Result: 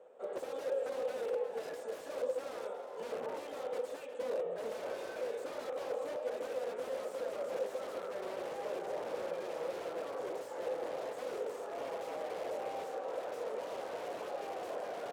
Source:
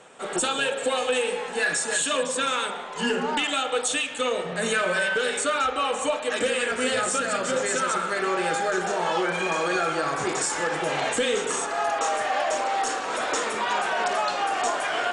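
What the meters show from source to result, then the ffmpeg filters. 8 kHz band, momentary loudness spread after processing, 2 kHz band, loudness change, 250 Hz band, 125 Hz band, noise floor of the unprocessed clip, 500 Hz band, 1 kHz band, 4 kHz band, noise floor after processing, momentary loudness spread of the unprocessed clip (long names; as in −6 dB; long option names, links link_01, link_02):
−28.5 dB, 4 LU, −24.5 dB, −15.0 dB, −18.0 dB, below −20 dB, −33 dBFS, −9.5 dB, −18.5 dB, −24.5 dB, −46 dBFS, 3 LU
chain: -af "aeval=exprs='(mod(11.2*val(0)+1,2)-1)/11.2':channel_layout=same,bandpass=frequency=520:width_type=q:width=4.5:csg=0,aecho=1:1:360:0.251,crystalizer=i=1.5:c=0,volume=-1dB"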